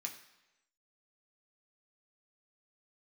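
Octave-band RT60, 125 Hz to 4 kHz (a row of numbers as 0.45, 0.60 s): 0.85, 0.90, 1.0, 0.95, 1.0, 0.95 s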